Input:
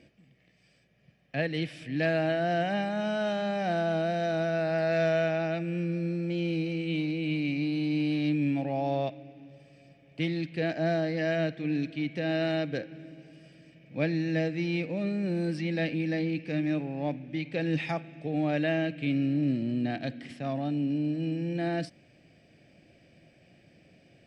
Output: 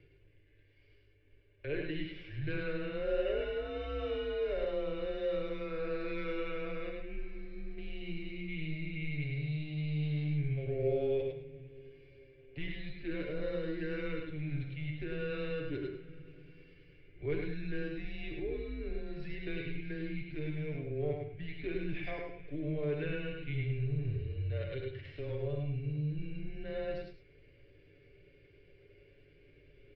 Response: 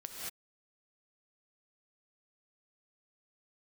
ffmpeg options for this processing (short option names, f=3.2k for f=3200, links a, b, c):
-filter_complex "[0:a]equalizer=f=1.4k:t=o:w=0.91:g=-11,aecho=1:1:6.9:0.54,asplit=2[a][b];[b]acompressor=threshold=-37dB:ratio=16,volume=-0.5dB[c];[a][c]amix=inputs=2:normalize=0,aeval=exprs='0.224*(cos(1*acos(clip(val(0)/0.224,-1,1)))-cos(1*PI/2))+0.00398*(cos(5*acos(clip(val(0)/0.224,-1,1)))-cos(5*PI/2))+0.00141*(cos(7*acos(clip(val(0)/0.224,-1,1)))-cos(7*PI/2))':c=same,aeval=exprs='val(0)+0.00562*(sin(2*PI*50*n/s)+sin(2*PI*2*50*n/s)/2+sin(2*PI*3*50*n/s)/3+sin(2*PI*4*50*n/s)/4+sin(2*PI*5*50*n/s)/5)':c=same,atempo=0.81,highpass=f=160:w=0.5412,highpass=f=160:w=1.3066,equalizer=f=360:t=q:w=4:g=-10,equalizer=f=510:t=q:w=4:g=7,equalizer=f=1.4k:t=q:w=4:g=4,lowpass=f=3.5k:w=0.5412,lowpass=f=3.5k:w=1.3066,aecho=1:1:103:0.562[d];[1:a]atrim=start_sample=2205,atrim=end_sample=6174,asetrate=52920,aresample=44100[e];[d][e]afir=irnorm=-1:irlink=0,afreqshift=-150,volume=-3dB"